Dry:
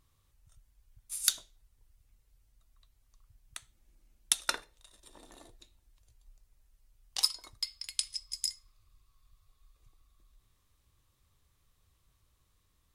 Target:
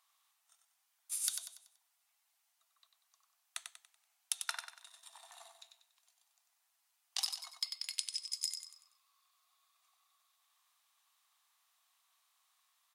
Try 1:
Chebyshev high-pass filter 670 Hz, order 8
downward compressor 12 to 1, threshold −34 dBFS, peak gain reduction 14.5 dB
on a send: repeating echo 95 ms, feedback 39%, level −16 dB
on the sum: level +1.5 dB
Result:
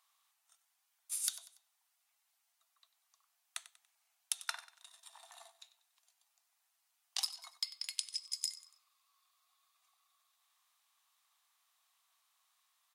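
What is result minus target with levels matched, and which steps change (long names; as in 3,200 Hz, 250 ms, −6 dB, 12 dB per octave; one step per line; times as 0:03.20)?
echo-to-direct −9.5 dB
change: repeating echo 95 ms, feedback 39%, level −6.5 dB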